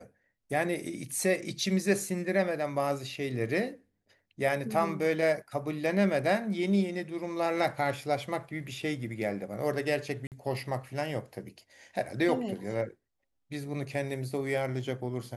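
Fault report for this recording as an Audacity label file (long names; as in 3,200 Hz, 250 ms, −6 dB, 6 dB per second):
10.270000	10.320000	drop-out 48 ms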